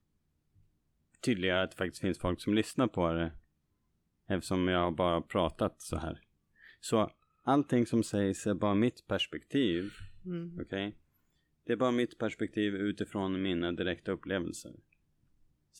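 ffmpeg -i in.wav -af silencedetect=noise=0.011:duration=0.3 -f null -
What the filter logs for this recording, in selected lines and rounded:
silence_start: 0.00
silence_end: 1.24 | silence_duration: 1.24
silence_start: 3.30
silence_end: 4.30 | silence_duration: 1.00
silence_start: 6.13
silence_end: 6.84 | silence_duration: 0.71
silence_start: 7.07
silence_end: 7.47 | silence_duration: 0.40
silence_start: 10.90
silence_end: 11.69 | silence_duration: 0.79
silence_start: 14.68
silence_end: 15.79 | silence_duration: 1.11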